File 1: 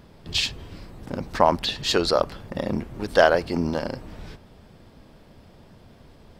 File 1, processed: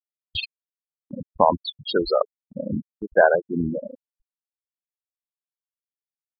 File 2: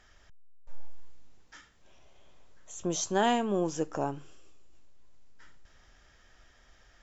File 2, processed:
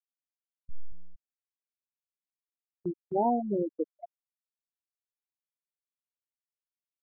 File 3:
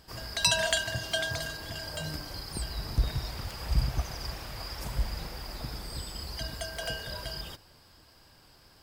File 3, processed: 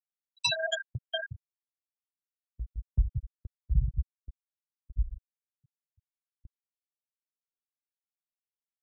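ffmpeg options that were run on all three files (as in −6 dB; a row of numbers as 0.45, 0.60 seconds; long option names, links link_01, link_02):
-filter_complex "[0:a]afftfilt=real='re*gte(hypot(re,im),0.224)':imag='im*gte(hypot(re,im),0.224)':win_size=1024:overlap=0.75,acrossover=split=3700[link_01][link_02];[link_02]acompressor=threshold=-42dB:ratio=4:attack=1:release=60[link_03];[link_01][link_03]amix=inputs=2:normalize=0,agate=range=-17dB:threshold=-46dB:ratio=16:detection=peak,highshelf=frequency=4700:gain=8,volume=1dB"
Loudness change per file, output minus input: +0.5, −1.0, −0.5 LU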